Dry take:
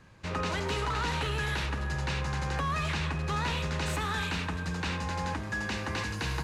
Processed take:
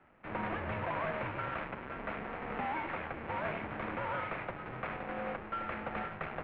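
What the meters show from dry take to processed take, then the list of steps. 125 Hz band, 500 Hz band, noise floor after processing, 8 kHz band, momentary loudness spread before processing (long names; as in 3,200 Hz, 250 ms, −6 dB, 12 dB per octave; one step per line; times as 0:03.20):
−13.5 dB, −2.0 dB, −46 dBFS, below −40 dB, 3 LU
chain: each half-wave held at its own peak
single-sideband voice off tune −310 Hz 430–2,700 Hz
level −5 dB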